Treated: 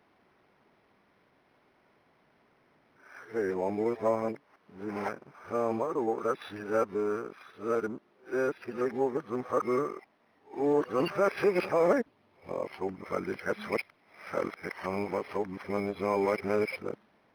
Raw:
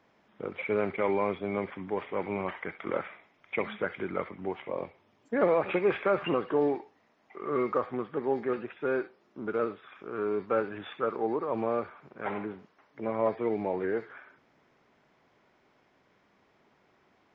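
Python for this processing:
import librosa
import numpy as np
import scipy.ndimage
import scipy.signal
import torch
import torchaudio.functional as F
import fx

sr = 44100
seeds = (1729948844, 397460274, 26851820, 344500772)

y = x[::-1].copy()
y = fx.high_shelf(y, sr, hz=3500.0, db=5.5)
y = np.interp(np.arange(len(y)), np.arange(len(y))[::6], y[::6])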